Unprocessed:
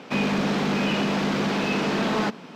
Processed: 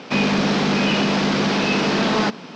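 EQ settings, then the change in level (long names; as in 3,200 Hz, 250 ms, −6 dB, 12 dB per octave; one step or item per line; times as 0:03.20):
low-pass with resonance 5,500 Hz, resonance Q 1.7
+4.5 dB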